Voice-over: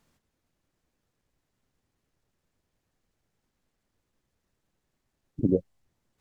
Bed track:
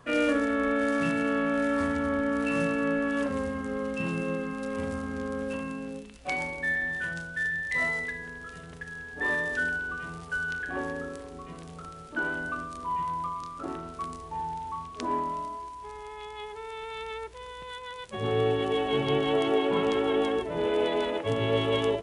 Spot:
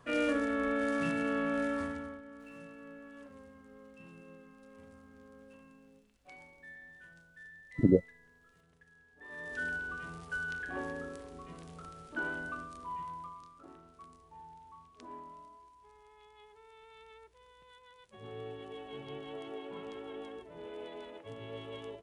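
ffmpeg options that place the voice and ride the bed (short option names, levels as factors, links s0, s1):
-filter_complex "[0:a]adelay=2400,volume=1[s0];[1:a]volume=3.76,afade=t=out:st=1.61:d=0.6:silence=0.133352,afade=t=in:st=9.29:d=0.45:silence=0.141254,afade=t=out:st=12.29:d=1.34:silence=0.237137[s1];[s0][s1]amix=inputs=2:normalize=0"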